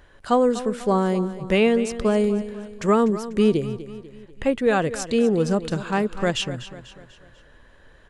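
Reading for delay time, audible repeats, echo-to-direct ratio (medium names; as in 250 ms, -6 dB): 246 ms, 4, -13.0 dB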